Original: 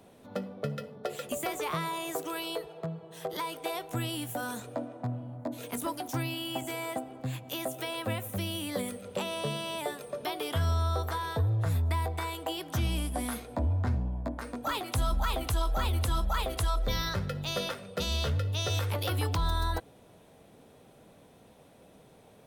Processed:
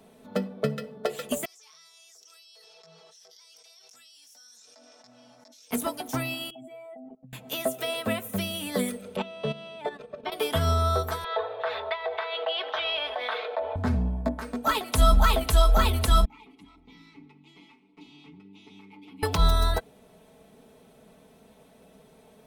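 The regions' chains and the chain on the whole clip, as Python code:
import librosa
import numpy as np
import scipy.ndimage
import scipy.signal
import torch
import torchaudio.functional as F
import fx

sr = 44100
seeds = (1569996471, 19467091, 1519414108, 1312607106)

y = fx.chain(x, sr, fx.bandpass_q(hz=5500.0, q=13.0),
    fx.env_flatten(amount_pct=100), at=(1.45, 5.71))
y = fx.chain(y, sr, fx.spec_expand(power=2.1),
    fx.level_steps(step_db=23), at=(6.5, 7.33))
y = fx.chain(y, sr, fx.lowpass(hz=3300.0, slope=12),
    fx.low_shelf(hz=110.0, db=3.5),
    fx.level_steps(step_db=11), at=(9.16, 10.32))
y = fx.chain(y, sr, fx.ellip_bandpass(low_hz=510.0, high_hz=3700.0, order=3, stop_db=40),
    fx.env_flatten(amount_pct=70), at=(11.24, 13.76))
y = fx.chain(y, sr, fx.lower_of_two(delay_ms=7.0),
    fx.vowel_filter(vowel='u'),
    fx.peak_eq(hz=770.0, db=-9.0, octaves=1.3), at=(16.25, 19.23))
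y = y + 0.64 * np.pad(y, (int(4.6 * sr / 1000.0), 0))[:len(y)]
y = fx.upward_expand(y, sr, threshold_db=-40.0, expansion=1.5)
y = F.gain(torch.from_numpy(y), 8.5).numpy()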